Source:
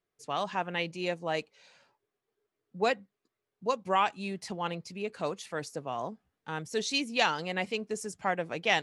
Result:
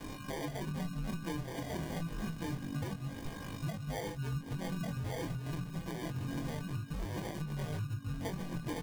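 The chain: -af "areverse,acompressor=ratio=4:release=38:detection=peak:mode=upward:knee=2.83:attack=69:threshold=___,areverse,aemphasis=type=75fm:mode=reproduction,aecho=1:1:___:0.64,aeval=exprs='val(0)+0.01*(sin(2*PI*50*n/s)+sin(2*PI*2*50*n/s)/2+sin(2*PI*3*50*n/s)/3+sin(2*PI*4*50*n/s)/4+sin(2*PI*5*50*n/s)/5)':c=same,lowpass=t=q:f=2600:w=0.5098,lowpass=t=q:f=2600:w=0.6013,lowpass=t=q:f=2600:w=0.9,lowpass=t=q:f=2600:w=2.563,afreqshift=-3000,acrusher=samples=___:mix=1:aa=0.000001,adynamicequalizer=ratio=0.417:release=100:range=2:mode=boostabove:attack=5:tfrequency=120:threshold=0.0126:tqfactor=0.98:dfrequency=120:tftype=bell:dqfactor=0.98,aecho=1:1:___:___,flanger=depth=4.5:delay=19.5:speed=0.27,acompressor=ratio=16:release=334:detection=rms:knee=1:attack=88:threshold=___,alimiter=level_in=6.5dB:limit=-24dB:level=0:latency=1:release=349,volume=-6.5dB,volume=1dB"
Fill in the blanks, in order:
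-32dB, 6.2, 33, 1144, 0.473, -31dB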